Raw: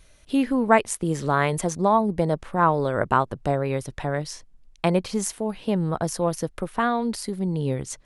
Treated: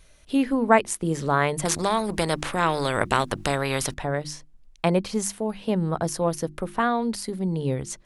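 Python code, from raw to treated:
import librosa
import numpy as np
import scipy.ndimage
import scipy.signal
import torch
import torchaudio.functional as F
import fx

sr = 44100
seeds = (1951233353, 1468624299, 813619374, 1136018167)

y = fx.hum_notches(x, sr, base_hz=50, count=7)
y = fx.spectral_comp(y, sr, ratio=2.0, at=(1.65, 3.94))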